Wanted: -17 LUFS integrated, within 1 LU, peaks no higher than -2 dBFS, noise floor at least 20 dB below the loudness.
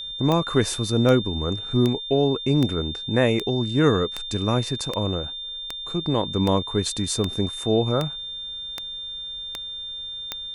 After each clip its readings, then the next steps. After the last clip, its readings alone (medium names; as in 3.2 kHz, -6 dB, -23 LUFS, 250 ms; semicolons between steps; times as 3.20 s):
clicks found 14; steady tone 3.6 kHz; tone level -31 dBFS; loudness -24.0 LUFS; peak level -5.5 dBFS; loudness target -17.0 LUFS
-> de-click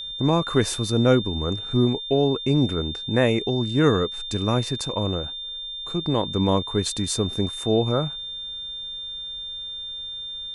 clicks found 0; steady tone 3.6 kHz; tone level -31 dBFS
-> band-stop 3.6 kHz, Q 30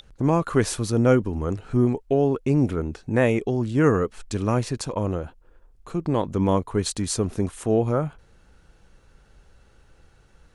steady tone not found; loudness -23.5 LUFS; peak level -6.0 dBFS; loudness target -17.0 LUFS
-> trim +6.5 dB; peak limiter -2 dBFS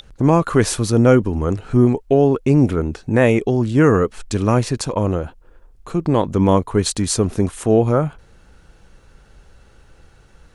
loudness -17.5 LUFS; peak level -2.0 dBFS; noise floor -50 dBFS